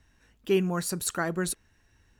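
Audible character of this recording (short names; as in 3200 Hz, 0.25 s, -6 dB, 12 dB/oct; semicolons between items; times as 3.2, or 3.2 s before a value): noise floor -66 dBFS; spectral tilt -4.5 dB/oct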